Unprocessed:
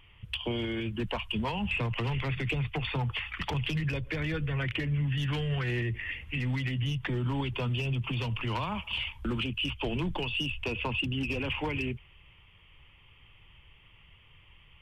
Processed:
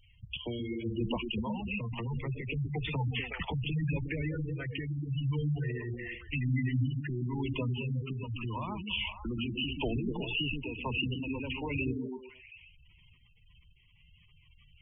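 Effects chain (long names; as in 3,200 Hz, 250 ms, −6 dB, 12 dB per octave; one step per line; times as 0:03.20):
sample-and-hold tremolo
echo through a band-pass that steps 122 ms, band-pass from 210 Hz, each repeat 0.7 octaves, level −0.5 dB
gate on every frequency bin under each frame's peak −15 dB strong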